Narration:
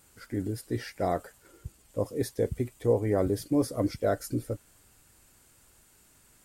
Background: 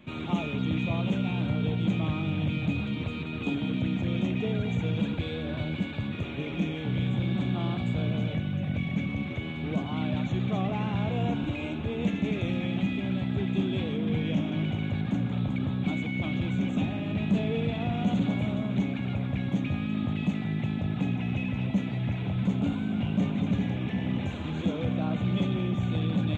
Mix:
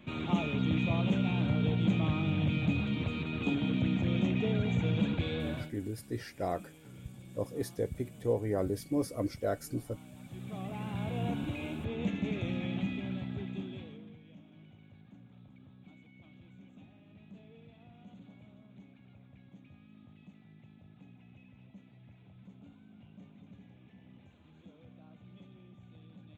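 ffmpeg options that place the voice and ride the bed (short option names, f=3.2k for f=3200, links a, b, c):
-filter_complex "[0:a]adelay=5400,volume=-5.5dB[a];[1:a]volume=15.5dB,afade=t=out:st=5.47:d=0.25:silence=0.0891251,afade=t=in:st=10.17:d=1.11:silence=0.141254,afade=t=out:st=12.75:d=1.42:silence=0.0841395[b];[a][b]amix=inputs=2:normalize=0"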